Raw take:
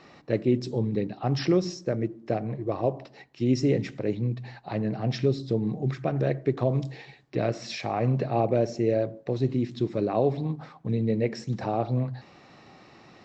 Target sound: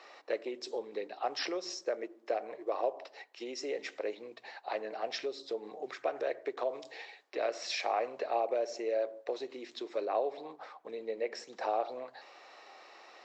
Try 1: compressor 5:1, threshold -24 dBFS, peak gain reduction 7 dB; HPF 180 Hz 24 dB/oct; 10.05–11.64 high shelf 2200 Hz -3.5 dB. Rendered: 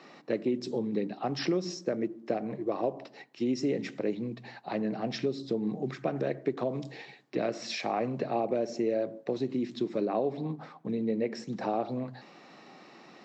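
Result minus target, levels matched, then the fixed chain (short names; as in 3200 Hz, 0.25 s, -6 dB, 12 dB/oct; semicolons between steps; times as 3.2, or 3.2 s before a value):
250 Hz band +11.0 dB
compressor 5:1, threshold -24 dBFS, peak gain reduction 7 dB; HPF 470 Hz 24 dB/oct; 10.05–11.64 high shelf 2200 Hz -3.5 dB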